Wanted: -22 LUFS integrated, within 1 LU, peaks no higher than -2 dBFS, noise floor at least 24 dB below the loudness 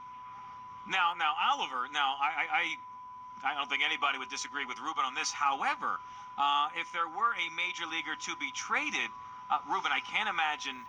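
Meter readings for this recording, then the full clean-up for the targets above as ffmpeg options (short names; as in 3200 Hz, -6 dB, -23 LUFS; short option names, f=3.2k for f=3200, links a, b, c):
steady tone 1000 Hz; tone level -44 dBFS; loudness -31.5 LUFS; peak -16.5 dBFS; loudness target -22.0 LUFS
-> -af "bandreject=f=1k:w=30"
-af "volume=9.5dB"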